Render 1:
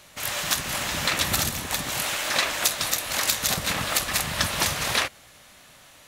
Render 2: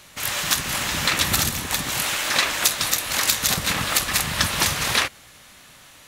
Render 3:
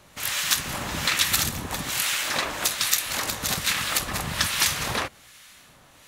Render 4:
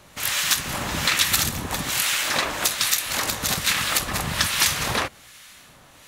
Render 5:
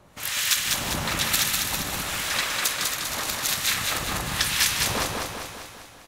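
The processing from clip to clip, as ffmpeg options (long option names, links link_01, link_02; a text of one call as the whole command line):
ffmpeg -i in.wav -af "equalizer=frequency=630:width=2.2:gain=-4.5,volume=3.5dB" out.wav
ffmpeg -i in.wav -filter_complex "[0:a]acrossover=split=1200[link_01][link_02];[link_01]aeval=exprs='val(0)*(1-0.7/2+0.7/2*cos(2*PI*1.2*n/s))':channel_layout=same[link_03];[link_02]aeval=exprs='val(0)*(1-0.7/2-0.7/2*cos(2*PI*1.2*n/s))':channel_layout=same[link_04];[link_03][link_04]amix=inputs=2:normalize=0" out.wav
ffmpeg -i in.wav -filter_complex "[0:a]asplit=2[link_01][link_02];[link_02]alimiter=limit=-10.5dB:level=0:latency=1:release=274,volume=-3dB[link_03];[link_01][link_03]amix=inputs=2:normalize=0,volume=4.5dB,asoftclip=hard,volume=-4.5dB,volume=-1.5dB" out.wav
ffmpeg -i in.wav -filter_complex "[0:a]asplit=2[link_01][link_02];[link_02]asplit=6[link_03][link_04][link_05][link_06][link_07][link_08];[link_03]adelay=154,afreqshift=-55,volume=-12dB[link_09];[link_04]adelay=308,afreqshift=-110,volume=-17.2dB[link_10];[link_05]adelay=462,afreqshift=-165,volume=-22.4dB[link_11];[link_06]adelay=616,afreqshift=-220,volume=-27.6dB[link_12];[link_07]adelay=770,afreqshift=-275,volume=-32.8dB[link_13];[link_08]adelay=924,afreqshift=-330,volume=-38dB[link_14];[link_09][link_10][link_11][link_12][link_13][link_14]amix=inputs=6:normalize=0[link_15];[link_01][link_15]amix=inputs=2:normalize=0,acrossover=split=1300[link_16][link_17];[link_16]aeval=exprs='val(0)*(1-0.7/2+0.7/2*cos(2*PI*1*n/s))':channel_layout=same[link_18];[link_17]aeval=exprs='val(0)*(1-0.7/2-0.7/2*cos(2*PI*1*n/s))':channel_layout=same[link_19];[link_18][link_19]amix=inputs=2:normalize=0,asplit=2[link_20][link_21];[link_21]aecho=0:1:199|398|597|796|995|1194|1393:0.668|0.361|0.195|0.105|0.0568|0.0307|0.0166[link_22];[link_20][link_22]amix=inputs=2:normalize=0,volume=-1.5dB" out.wav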